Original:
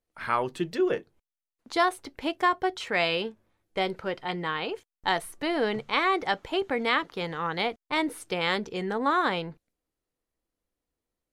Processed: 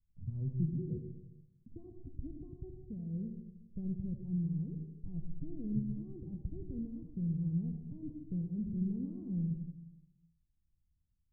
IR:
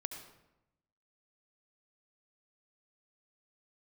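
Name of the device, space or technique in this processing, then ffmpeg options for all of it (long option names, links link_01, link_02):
club heard from the street: -filter_complex "[0:a]alimiter=limit=-19.5dB:level=0:latency=1:release=17,lowpass=frequency=150:width=0.5412,lowpass=frequency=150:width=1.3066[link_01];[1:a]atrim=start_sample=2205[link_02];[link_01][link_02]afir=irnorm=-1:irlink=0,volume=13dB"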